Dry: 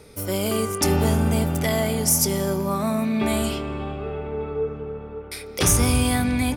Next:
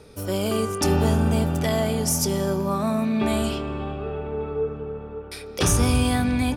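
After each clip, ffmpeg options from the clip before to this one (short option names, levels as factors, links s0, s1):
-af "highshelf=f=9500:g=-11,bandreject=f=2100:w=7.3"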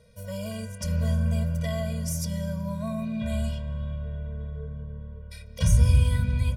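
-af "asubboost=boost=4.5:cutoff=150,afftfilt=real='re*eq(mod(floor(b*sr/1024/230),2),0)':imag='im*eq(mod(floor(b*sr/1024/230),2),0)':win_size=1024:overlap=0.75,volume=0.447"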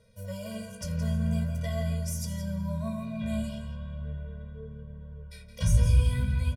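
-filter_complex "[0:a]asplit=2[s0][s1];[s1]adelay=169.1,volume=0.398,highshelf=f=4000:g=-3.8[s2];[s0][s2]amix=inputs=2:normalize=0,flanger=delay=9.2:depth=9.5:regen=40:speed=0.43:shape=sinusoidal"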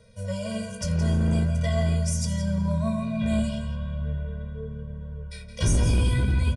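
-filter_complex "[0:a]acrossover=split=560[s0][s1];[s0]volume=18.8,asoftclip=hard,volume=0.0531[s2];[s2][s1]amix=inputs=2:normalize=0,aresample=22050,aresample=44100,volume=2.24"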